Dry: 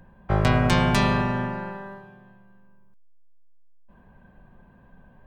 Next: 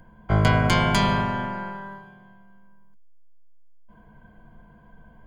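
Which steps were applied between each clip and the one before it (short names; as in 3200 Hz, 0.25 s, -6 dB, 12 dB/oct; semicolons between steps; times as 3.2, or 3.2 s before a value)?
ripple EQ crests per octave 1.8, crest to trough 12 dB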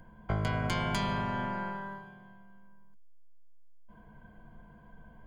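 compressor 4:1, threshold -26 dBFS, peak gain reduction 10.5 dB; gain -3 dB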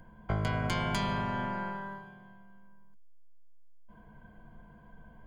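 nothing audible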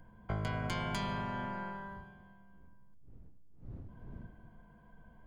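wind noise 130 Hz -50 dBFS; gain -5 dB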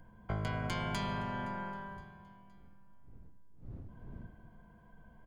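feedback echo 0.517 s, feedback 45%, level -22.5 dB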